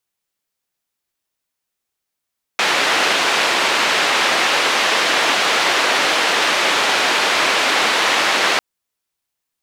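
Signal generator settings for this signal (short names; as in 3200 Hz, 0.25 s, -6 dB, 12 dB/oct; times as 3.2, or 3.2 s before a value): noise band 380–3000 Hz, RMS -16.5 dBFS 6.00 s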